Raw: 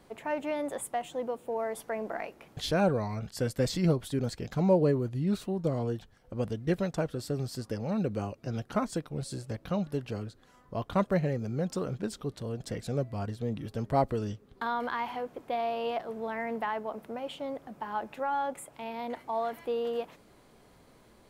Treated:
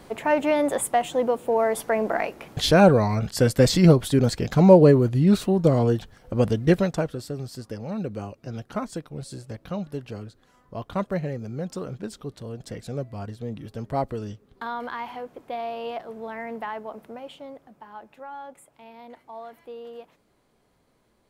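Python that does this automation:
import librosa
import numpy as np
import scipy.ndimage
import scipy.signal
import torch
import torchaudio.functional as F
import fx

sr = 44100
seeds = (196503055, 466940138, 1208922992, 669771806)

y = fx.gain(x, sr, db=fx.line((6.65, 11.0), (7.33, 0.0), (17.04, 0.0), (17.9, -8.0)))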